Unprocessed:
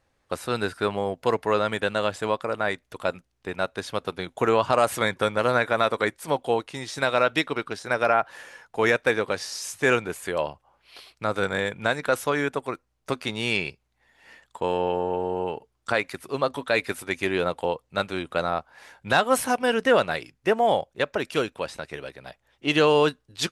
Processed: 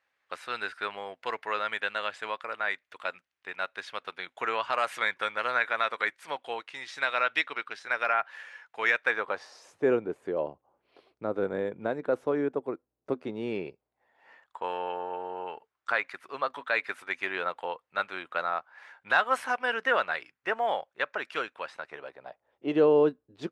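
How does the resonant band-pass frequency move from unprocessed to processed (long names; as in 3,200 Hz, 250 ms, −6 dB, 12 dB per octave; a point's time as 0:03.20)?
resonant band-pass, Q 1.2
0:08.97 2,000 Hz
0:09.89 360 Hz
0:13.54 360 Hz
0:14.72 1,500 Hz
0:21.64 1,500 Hz
0:22.90 360 Hz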